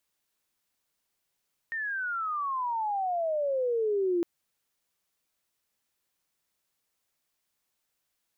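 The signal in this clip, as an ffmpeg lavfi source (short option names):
-f lavfi -i "aevalsrc='pow(10,(-23.5+6.5*(t/2.51-1))/20)*sin(2*PI*1850*2.51/(-29.5*log(2)/12)*(exp(-29.5*log(2)/12*t/2.51)-1))':d=2.51:s=44100"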